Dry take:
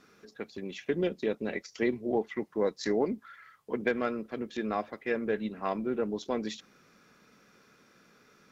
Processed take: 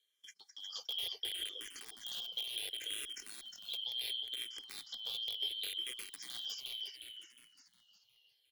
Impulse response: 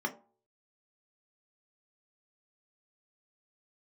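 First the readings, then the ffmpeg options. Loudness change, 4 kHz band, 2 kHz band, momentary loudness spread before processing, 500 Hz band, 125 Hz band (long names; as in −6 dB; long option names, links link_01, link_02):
−7.0 dB, +12.0 dB, −12.0 dB, 11 LU, −31.0 dB, below −25 dB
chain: -filter_complex "[0:a]afftfilt=real='real(if(lt(b,272),68*(eq(floor(b/68),0)*1+eq(floor(b/68),1)*3+eq(floor(b/68),2)*0+eq(floor(b/68),3)*2)+mod(b,68),b),0)':imag='imag(if(lt(b,272),68*(eq(floor(b/68),0)*1+eq(floor(b/68),1)*3+eq(floor(b/68),2)*0+eq(floor(b/68),3)*2)+mod(b,68),b),0)':win_size=2048:overlap=0.75,asuperstop=centerf=2600:order=4:qfactor=6.5,alimiter=limit=-23dB:level=0:latency=1:release=12,aderivative,aeval=exprs='(mod(33.5*val(0)+1,2)-1)/33.5':channel_layout=same,acompressor=threshold=-52dB:ratio=5,equalizer=frequency=125:width_type=o:width=1:gain=4,equalizer=frequency=500:width_type=o:width=1:gain=11,equalizer=frequency=1000:width_type=o:width=1:gain=-4,equalizer=frequency=2000:width_type=o:width=1:gain=6,agate=range=-22dB:threshold=-58dB:ratio=16:detection=peak,aecho=1:1:2.5:0.42,asplit=2[link_01][link_02];[link_02]asplit=6[link_03][link_04][link_05][link_06][link_07][link_08];[link_03]adelay=359,afreqshift=-64,volume=-3dB[link_09];[link_04]adelay=718,afreqshift=-128,volume=-9.9dB[link_10];[link_05]adelay=1077,afreqshift=-192,volume=-16.9dB[link_11];[link_06]adelay=1436,afreqshift=-256,volume=-23.8dB[link_12];[link_07]adelay=1795,afreqshift=-320,volume=-30.7dB[link_13];[link_08]adelay=2154,afreqshift=-384,volume=-37.7dB[link_14];[link_09][link_10][link_11][link_12][link_13][link_14]amix=inputs=6:normalize=0[link_15];[link_01][link_15]amix=inputs=2:normalize=0,asplit=2[link_16][link_17];[link_17]afreqshift=-0.7[link_18];[link_16][link_18]amix=inputs=2:normalize=1,volume=10.5dB"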